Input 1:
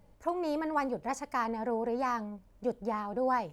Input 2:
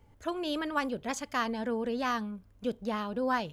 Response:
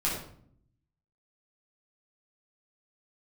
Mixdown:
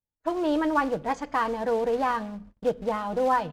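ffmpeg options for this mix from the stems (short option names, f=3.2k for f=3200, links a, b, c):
-filter_complex "[0:a]lowpass=f=2.1k:w=0.5412,lowpass=f=2.1k:w=1.3066,dynaudnorm=f=110:g=5:m=9.5dB,acrusher=bits=4:mode=log:mix=0:aa=0.000001,volume=-4dB[a];[1:a]lowpass=8.2k,adelay=6.2,volume=-2.5dB,asplit=2[b][c];[c]volume=-19dB[d];[2:a]atrim=start_sample=2205[e];[d][e]afir=irnorm=-1:irlink=0[f];[a][b][f]amix=inputs=3:normalize=0,agate=range=-36dB:threshold=-47dB:ratio=16:detection=peak,aemphasis=mode=reproduction:type=50fm"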